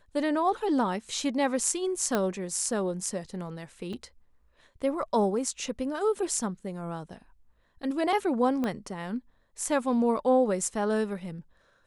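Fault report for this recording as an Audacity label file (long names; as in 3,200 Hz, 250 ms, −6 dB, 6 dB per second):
2.150000	2.150000	click −13 dBFS
3.930000	3.930000	drop-out 4.3 ms
8.640000	8.640000	click −18 dBFS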